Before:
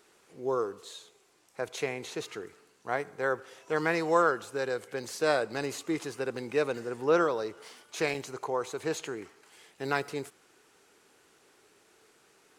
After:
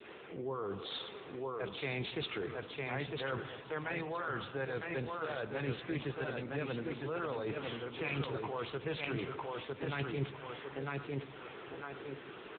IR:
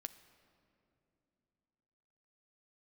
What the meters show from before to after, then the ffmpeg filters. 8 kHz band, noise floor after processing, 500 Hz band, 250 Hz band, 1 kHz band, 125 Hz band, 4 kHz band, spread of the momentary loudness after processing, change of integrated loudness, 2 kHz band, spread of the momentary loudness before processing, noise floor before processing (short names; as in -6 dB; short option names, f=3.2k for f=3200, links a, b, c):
under -35 dB, -51 dBFS, -8.5 dB, -5.0 dB, -8.5 dB, +3.5 dB, -1.5 dB, 7 LU, -8.5 dB, -6.0 dB, 17 LU, -64 dBFS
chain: -filter_complex "[0:a]areverse,acompressor=threshold=-39dB:ratio=16,areverse,adynamicequalizer=threshold=0.00112:dfrequency=1000:dqfactor=0.82:tfrequency=1000:tqfactor=0.82:attack=5:release=100:ratio=0.375:range=3:mode=boostabove:tftype=bell,aecho=1:1:954|1908|2862:0.596|0.149|0.0372,acrossover=split=160|3000[a][b][c];[b]acompressor=threshold=-56dB:ratio=4[d];[a][d][c]amix=inputs=3:normalize=0,asplit=2[e][f];[1:a]atrim=start_sample=2205,asetrate=22932,aresample=44100[g];[f][g]afir=irnorm=-1:irlink=0,volume=12dB[h];[e][h]amix=inputs=2:normalize=0,asoftclip=type=tanh:threshold=-21.5dB,volume=3.5dB" -ar 8000 -c:a libopencore_amrnb -b:a 6700